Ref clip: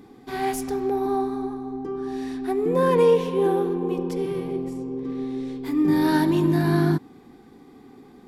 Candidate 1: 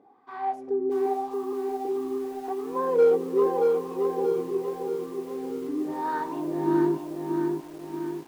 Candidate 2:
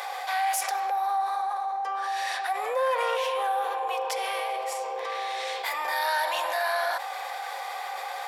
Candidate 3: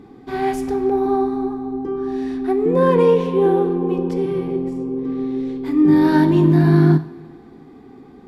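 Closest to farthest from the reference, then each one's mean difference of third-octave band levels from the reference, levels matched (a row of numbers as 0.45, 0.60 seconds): 3, 1, 2; 3.0, 8.5, 18.5 decibels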